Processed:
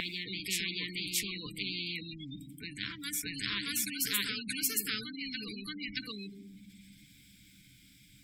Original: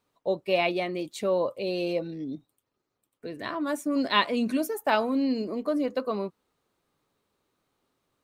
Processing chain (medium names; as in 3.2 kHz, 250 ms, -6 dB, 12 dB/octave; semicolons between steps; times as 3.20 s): dynamic bell 2.4 kHz, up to -5 dB, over -39 dBFS, Q 1.3; elliptic band-stop 230–2100 Hz, stop band 80 dB; simulated room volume 1900 m³, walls furnished, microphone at 0.46 m; spectral gate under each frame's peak -30 dB strong; rippled EQ curve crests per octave 1.7, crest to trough 10 dB; reverse echo 627 ms -7.5 dB; spectrum-flattening compressor 4:1